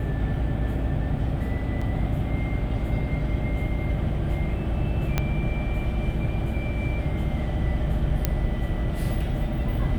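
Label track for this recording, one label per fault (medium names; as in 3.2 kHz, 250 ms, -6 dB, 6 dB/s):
1.810000	1.810000	dropout 5 ms
5.180000	5.180000	pop -9 dBFS
8.250000	8.250000	pop -7 dBFS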